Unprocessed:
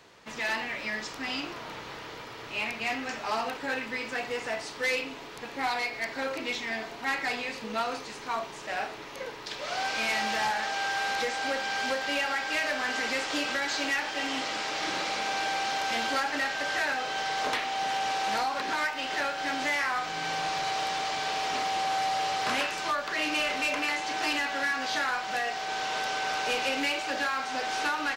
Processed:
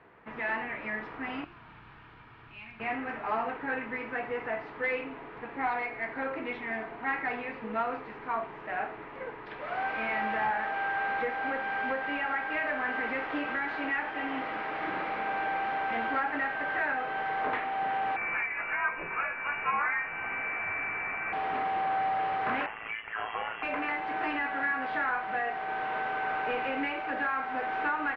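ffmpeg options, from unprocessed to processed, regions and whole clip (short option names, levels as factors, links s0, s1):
-filter_complex "[0:a]asettb=1/sr,asplit=3[s0][s1][s2];[s0]atrim=end=1.444[s3];[s1]atrim=start=1.44:end=2.8,asetpts=PTS-STARTPTS,afade=t=in:d=0.004:c=qsin,afade=t=out:st=1.356:d=0.004:c=qsin,equalizer=f=510:w=1.3:g=-12,acrossover=split=130|3000[s4][s5][s6];[s5]acompressor=threshold=0.00158:ratio=2:attack=3.2:release=140:knee=2.83:detection=peak[s7];[s4][s7][s6]amix=inputs=3:normalize=0,bandreject=f=2000:w=10[s8];[s2]atrim=start=2.796[s9];[s3][s8]acrossfade=d=0.004:c1=hsin:c2=qsin[s10];[s10][s9]acrossfade=d=0.004:c1=qsin:c2=hsin,asettb=1/sr,asplit=3[s11][s12][s13];[s11]atrim=end=18.164[s14];[s12]atrim=start=18.16:end=21.33,asetpts=PTS-STARTPTS,afade=t=in:d=0.004:c=qsin,afade=t=out:st=3.166:d=0.004:c=qsin,lowshelf=f=210:g=-9,asplit=2[s15][s16];[s16]adelay=17,volume=0.501[s17];[s15][s17]amix=inputs=2:normalize=0,atrim=end_sample=139797,lowpass=f=2600:t=q:w=0.5098,lowpass=f=2600:t=q:w=0.6013,lowpass=f=2600:t=q:w=0.9,lowpass=f=2600:t=q:w=2.563,afreqshift=-3100[s18];[s13]atrim=start=21.326[s19];[s14][s18]acrossfade=d=0.004:c1=hsin:c2=qsin[s20];[s20][s19]acrossfade=d=0.004:c1=qsin:c2=hsin,asettb=1/sr,asplit=3[s21][s22][s23];[s21]atrim=end=22.664[s24];[s22]atrim=start=22.66:end=23.63,asetpts=PTS-STARTPTS,afade=t=in:d=0.004:c=qsin,afade=t=out:st=0.966:d=0.004:c=qsin,lowpass=f=3000:t=q:w=0.5098,lowpass=f=3000:t=q:w=0.6013,lowpass=f=3000:t=q:w=0.9,lowpass=f=3000:t=q:w=2.563,afreqshift=-3500,tremolo=f=110:d=0.75[s25];[s23]atrim=start=23.626[s26];[s24][s25]acrossfade=d=0.004:c1=hsin:c2=qsin[s27];[s27][s26]acrossfade=d=0.004:c1=qsin:c2=hsin,lowpass=f=2100:w=0.5412,lowpass=f=2100:w=1.3066,bandreject=f=560:w=12"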